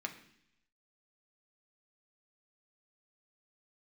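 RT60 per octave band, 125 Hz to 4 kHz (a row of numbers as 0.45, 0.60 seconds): 0.95, 0.90, 0.70, 0.70, 0.90, 0.95 seconds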